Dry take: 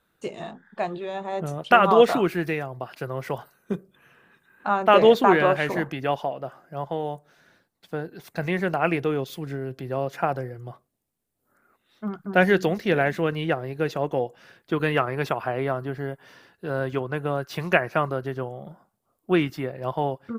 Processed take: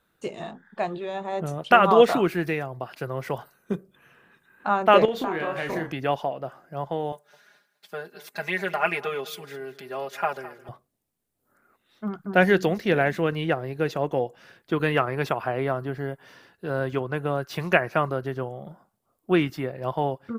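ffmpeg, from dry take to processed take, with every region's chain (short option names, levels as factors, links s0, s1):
-filter_complex "[0:a]asettb=1/sr,asplit=3[s0][s1][s2];[s0]atrim=end=5.054[s3];[s1]atrim=start=5.05:end=5.92,asetpts=PTS-STARTPTS,afade=t=in:d=0.004:c=qsin,afade=t=out:st=0.866:d=0.004:c=qsin,bandreject=f=279.6:t=h:w=4,bandreject=f=559.2:t=h:w=4,bandreject=f=838.8:t=h:w=4,bandreject=f=1118.4:t=h:w=4,bandreject=f=1398:t=h:w=4,bandreject=f=1677.6:t=h:w=4,bandreject=f=1957.2:t=h:w=4,bandreject=f=2236.8:t=h:w=4,bandreject=f=2516.4:t=h:w=4,bandreject=f=2796:t=h:w=4,bandreject=f=3075.6:t=h:w=4,bandreject=f=3355.2:t=h:w=4,bandreject=f=3634.8:t=h:w=4,bandreject=f=3914.4:t=h:w=4,bandreject=f=4194:t=h:w=4,bandreject=f=4473.6:t=h:w=4,bandreject=f=4753.2:t=h:w=4,bandreject=f=5032.8:t=h:w=4,bandreject=f=5312.4:t=h:w=4,bandreject=f=5592:t=h:w=4,bandreject=f=5871.6:t=h:w=4,bandreject=f=6151.2:t=h:w=4,bandreject=f=6430.8:t=h:w=4,bandreject=f=6710.4:t=h:w=4,bandreject=f=6990:t=h:w=4,bandreject=f=7269.6:t=h:w=4,bandreject=f=7549.2:t=h:w=4,bandreject=f=7828.8:t=h:w=4,bandreject=f=8108.4:t=h:w=4,bandreject=f=8388:t=h:w=4,bandreject=f=8667.6:t=h:w=4,bandreject=f=8947.2:t=h:w=4,bandreject=f=9226.8:t=h:w=4,bandreject=f=9506.4:t=h:w=4,bandreject=f=9786:t=h:w=4,bandreject=f=10065.6:t=h:w=4,bandreject=f=10345.2:t=h:w=4,acompressor=threshold=0.0631:ratio=10:attack=3.2:release=140:knee=1:detection=peak,asplit=2[s4][s5];[s5]adelay=31,volume=0.501[s6];[s4][s6]amix=inputs=2:normalize=0,atrim=end_sample=38367[s7];[s2]atrim=start=5.916[s8];[s3][s7]acrossfade=d=0.004:c1=hsin:c2=qsin[s9];[s9][s8]acrossfade=d=0.004:c1=qsin:c2=hsin,asettb=1/sr,asplit=3[s10][s11][s12];[s10]atrim=end=7.124[s13];[s11]atrim=start=7.12:end=10.69,asetpts=PTS-STARTPTS,afade=t=in:d=0.004:c=qsin,afade=t=out:st=3.566:d=0.004:c=qsin,highpass=f=1000:p=1,aecho=1:1:4.9:0.97,atrim=end_sample=157437,aecho=1:1:209|418|627:0.141|0.0381|0.0103,atrim=end_sample=157437[s14];[s12]atrim=start=10.686[s15];[s13][s14]acrossfade=d=0.004:c1=hsin:c2=qsin[s16];[s16][s15]acrossfade=d=0.004:c1=qsin:c2=hsin"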